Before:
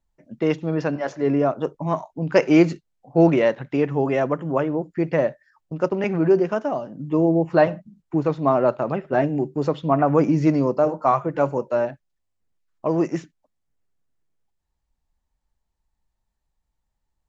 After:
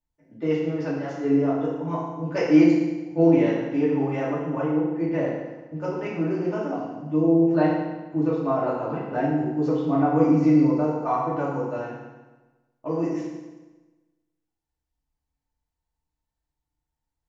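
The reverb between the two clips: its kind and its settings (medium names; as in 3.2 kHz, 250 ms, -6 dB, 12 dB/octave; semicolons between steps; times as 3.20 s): FDN reverb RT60 1.2 s, low-frequency decay 1.05×, high-frequency decay 0.9×, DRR -8 dB; trim -13.5 dB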